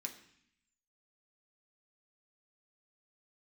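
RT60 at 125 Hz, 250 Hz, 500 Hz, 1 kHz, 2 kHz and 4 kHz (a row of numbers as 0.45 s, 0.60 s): 0.95 s, 0.95 s, 0.60 s, 0.70 s, 0.90 s, 0.85 s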